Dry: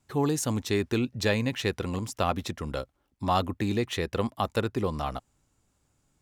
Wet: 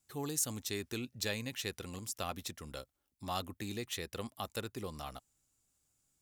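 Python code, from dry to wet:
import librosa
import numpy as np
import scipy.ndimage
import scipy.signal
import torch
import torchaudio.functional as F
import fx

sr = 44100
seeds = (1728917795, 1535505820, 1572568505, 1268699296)

y = scipy.signal.lfilter([1.0, -0.8], [1.0], x)
y = fx.notch(y, sr, hz=970.0, q=13.0)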